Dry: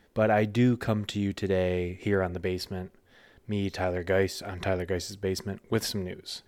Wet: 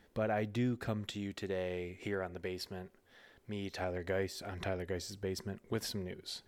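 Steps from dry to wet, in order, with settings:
0:01.12–0:03.82: low-shelf EQ 280 Hz −7 dB
downward compressor 1.5 to 1, threshold −41 dBFS, peak gain reduction 8 dB
level −3 dB

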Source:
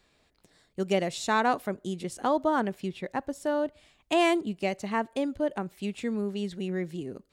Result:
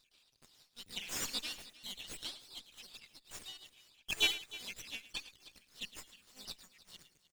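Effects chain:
time-frequency cells dropped at random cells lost 64%
Butterworth high-pass 2,400 Hz 72 dB per octave
pitch-shifted copies added −7 semitones −17 dB, +4 semitones −1 dB
on a send: multi-tap delay 110/308 ms −15/−17.5 dB
on the sum: windowed peak hold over 3 samples
level +4 dB

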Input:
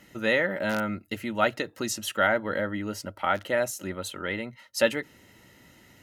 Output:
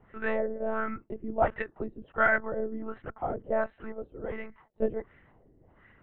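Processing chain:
one-pitch LPC vocoder at 8 kHz 220 Hz
auto-filter low-pass sine 1.4 Hz 390–1,800 Hz
level −4.5 dB

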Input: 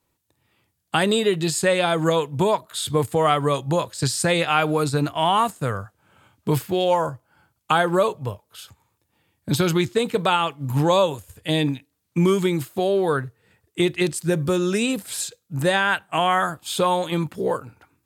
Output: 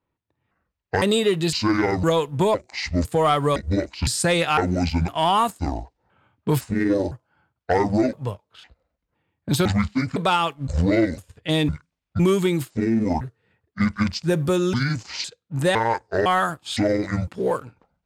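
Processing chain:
pitch shifter gated in a rhythm −9.5 semitones, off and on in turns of 508 ms
leveller curve on the samples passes 1
low-pass that shuts in the quiet parts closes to 2,300 Hz, open at −16.5 dBFS
level −3 dB

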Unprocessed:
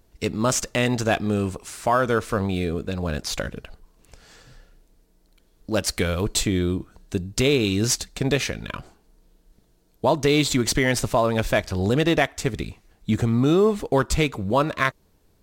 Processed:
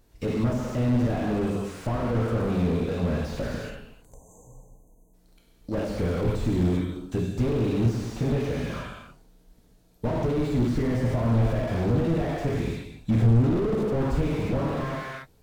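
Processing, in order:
time-frequency box erased 0:03.89–0:05.14, 1,100–6,000 Hz
reverb whose tail is shaped and stops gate 380 ms falling, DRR −2 dB
slew-rate limiting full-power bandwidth 33 Hz
level −2.5 dB

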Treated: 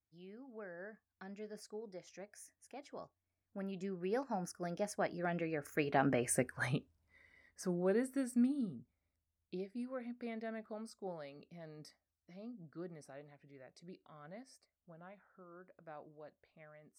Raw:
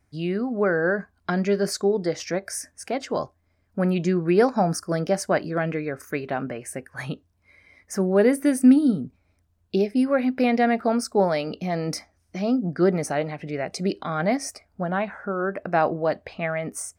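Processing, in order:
source passing by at 0:06.31, 20 m/s, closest 5.1 metres

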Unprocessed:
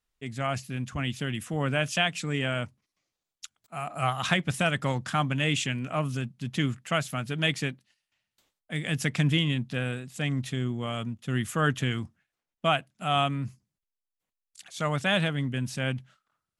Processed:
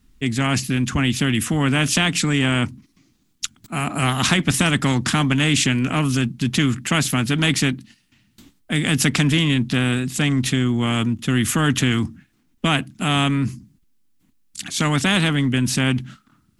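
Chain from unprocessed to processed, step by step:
low shelf with overshoot 380 Hz +12 dB, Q 3
in parallel at −2.5 dB: brickwall limiter −11.5 dBFS, peak gain reduction 10 dB
on the sum: every bin compressed towards the loudest bin 2 to 1
level −3.5 dB

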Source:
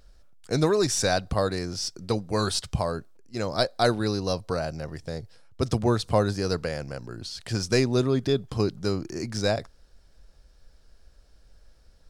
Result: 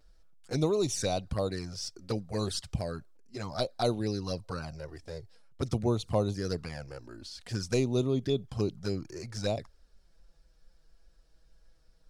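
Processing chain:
flanger swept by the level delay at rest 6.9 ms, full sweep at −20.5 dBFS
level −4.5 dB

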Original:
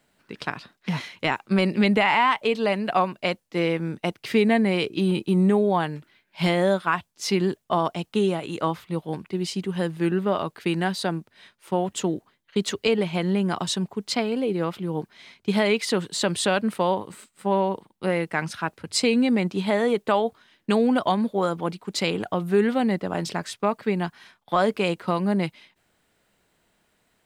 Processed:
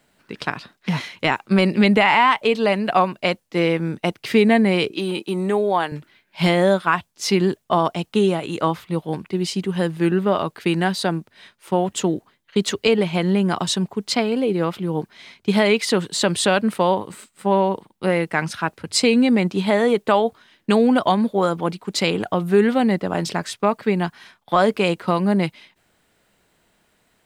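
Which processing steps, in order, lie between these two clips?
0:04.91–0:05.92: Bessel high-pass filter 390 Hz, order 2
level +4.5 dB

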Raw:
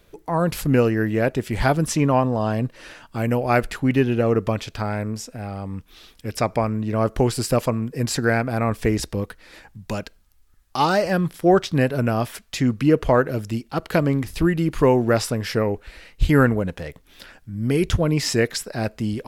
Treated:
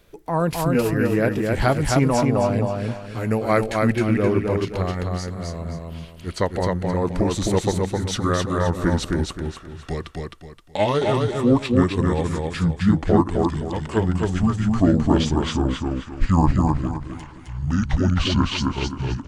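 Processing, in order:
pitch glide at a constant tempo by −10 semitones starting unshifted
repeating echo 262 ms, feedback 32%, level −3 dB

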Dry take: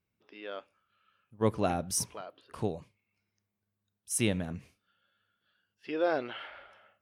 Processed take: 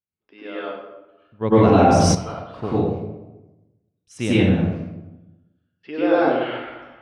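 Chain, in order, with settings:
high-frequency loss of the air 160 metres
noise gate with hold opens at −60 dBFS
convolution reverb RT60 1.0 s, pre-delay 89 ms, DRR −9 dB
0:01.52–0:02.15: envelope flattener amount 70%
level +3.5 dB

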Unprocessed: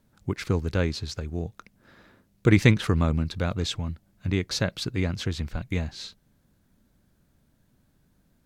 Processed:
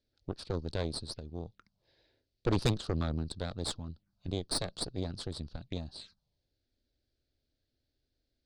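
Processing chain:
phaser swept by the level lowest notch 170 Hz, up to 2,100 Hz, full sweep at −28.5 dBFS
transistor ladder low-pass 5,100 Hz, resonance 60%
harmonic generator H 6 −9 dB, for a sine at −16 dBFS
level −2.5 dB

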